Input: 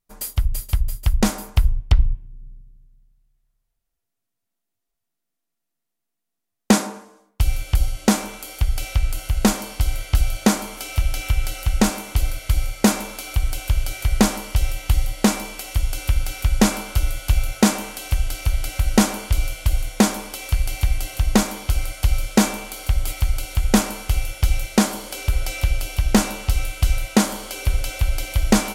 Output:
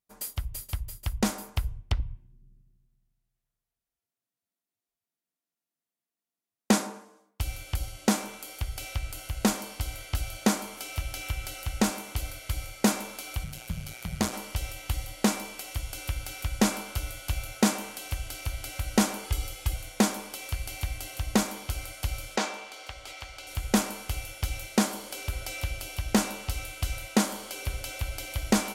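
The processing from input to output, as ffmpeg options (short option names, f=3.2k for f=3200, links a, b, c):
-filter_complex "[0:a]asplit=3[a][b][c];[a]afade=t=out:st=13.43:d=0.02[d];[b]tremolo=f=120:d=0.824,afade=t=in:st=13.43:d=0.02,afade=t=out:st=14.32:d=0.02[e];[c]afade=t=in:st=14.32:d=0.02[f];[d][e][f]amix=inputs=3:normalize=0,asettb=1/sr,asplit=3[g][h][i];[g]atrim=end=19.244[j];[h]atrim=start=19.24:end=19.74,asetpts=PTS-STARTPTS,afade=t=in:d=0.004:c=qsin,afade=t=out:st=0.496:d=0.004:c=qsin,aecho=1:1:2.4:0.65,atrim=end_sample=22050[k];[i]atrim=start=19.736[l];[j][k]acrossfade=d=0.004:c1=hsin:c2=qsin[m];[m][l]acrossfade=d=0.004:c1=qsin:c2=hsin,asettb=1/sr,asplit=3[n][o][p];[n]atrim=end=22.364[q];[o]atrim=start=22.36:end=23.47,asetpts=PTS-STARTPTS,afade=t=in:d=0.004:c=qsin,afade=t=out:st=1.106:d=0.004:c=qsin,acrossover=split=380 6700:gain=0.178 1 0.112[r][s][t];[r][s][t]amix=inputs=3:normalize=0[u];[p]atrim=start=23.466[v];[q][u]acrossfade=d=0.004:c1=hsin:c2=qsin[w];[w][v]acrossfade=d=0.004:c1=qsin:c2=hsin,highpass=41,lowshelf=f=95:g=-7,volume=-6.5dB"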